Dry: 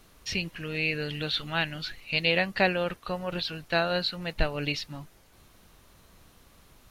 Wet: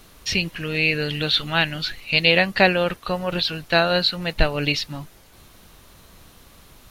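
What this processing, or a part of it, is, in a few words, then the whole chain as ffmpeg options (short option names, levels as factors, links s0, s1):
presence and air boost: -af "equalizer=f=3700:t=o:w=0.77:g=2,highshelf=f=11000:g=3.5,volume=2.37"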